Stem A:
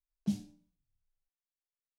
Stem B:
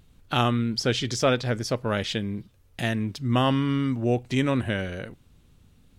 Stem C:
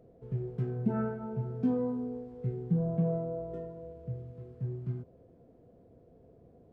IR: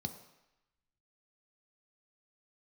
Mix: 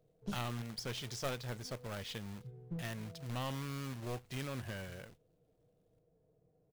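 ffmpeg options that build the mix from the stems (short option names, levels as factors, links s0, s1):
-filter_complex "[0:a]volume=0.631[s0];[1:a]agate=range=0.224:threshold=0.00631:ratio=16:detection=peak,acrusher=bits=2:mode=log:mix=0:aa=0.000001,volume=0.2,asplit=2[s1][s2];[2:a]aecho=1:1:6.5:0.6,volume=0.2[s3];[s2]apad=whole_len=296800[s4];[s3][s4]sidechaincompress=threshold=0.00316:ratio=8:attack=16:release=272[s5];[s0][s1][s5]amix=inputs=3:normalize=0,equalizer=f=280:w=1.8:g=-7,aeval=exprs='clip(val(0),-1,0.01)':c=same"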